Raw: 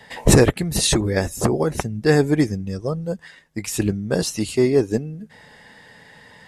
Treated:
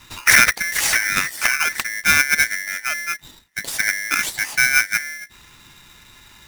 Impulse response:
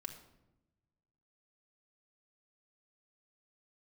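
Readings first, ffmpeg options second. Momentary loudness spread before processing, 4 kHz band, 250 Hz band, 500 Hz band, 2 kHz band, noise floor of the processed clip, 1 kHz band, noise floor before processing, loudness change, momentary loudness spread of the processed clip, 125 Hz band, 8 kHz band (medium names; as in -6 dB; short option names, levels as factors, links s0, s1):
14 LU, +4.5 dB, -19.0 dB, -21.0 dB, +15.0 dB, -49 dBFS, +5.0 dB, -49 dBFS, +3.0 dB, 14 LU, -19.5 dB, +5.0 dB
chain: -af "afreqshift=16,aeval=exprs='val(0)*sgn(sin(2*PI*1900*n/s))':c=same"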